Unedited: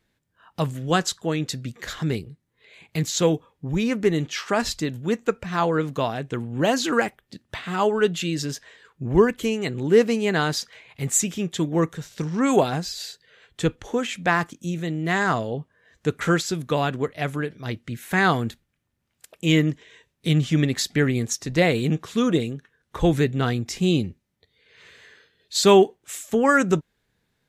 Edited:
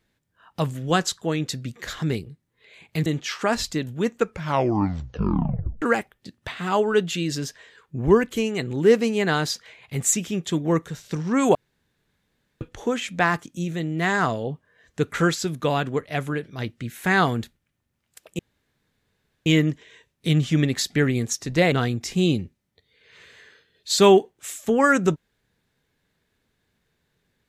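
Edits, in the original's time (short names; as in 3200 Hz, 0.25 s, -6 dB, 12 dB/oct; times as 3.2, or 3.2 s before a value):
3.06–4.13 cut
5.32 tape stop 1.57 s
12.62–13.68 room tone
19.46 insert room tone 1.07 s
21.72–23.37 cut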